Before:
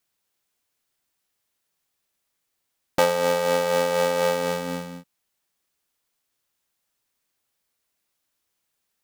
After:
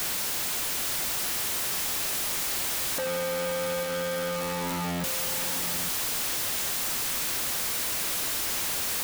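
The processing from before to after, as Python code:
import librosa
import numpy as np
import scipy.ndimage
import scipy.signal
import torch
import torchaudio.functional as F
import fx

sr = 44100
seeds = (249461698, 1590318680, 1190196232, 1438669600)

p1 = np.sign(x) * np.sqrt(np.mean(np.square(x)))
y = p1 + fx.echo_single(p1, sr, ms=847, db=-11.0, dry=0)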